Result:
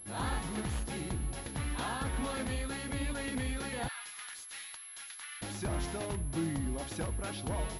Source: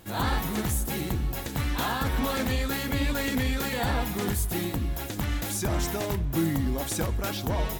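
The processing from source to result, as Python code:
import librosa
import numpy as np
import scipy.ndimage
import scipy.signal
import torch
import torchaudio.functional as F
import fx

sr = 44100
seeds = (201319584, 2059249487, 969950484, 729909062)

y = fx.rider(x, sr, range_db=10, speed_s=2.0)
y = fx.highpass(y, sr, hz=1300.0, slope=24, at=(3.87, 5.41), fade=0.02)
y = fx.pwm(y, sr, carrier_hz=11000.0)
y = y * librosa.db_to_amplitude(-8.0)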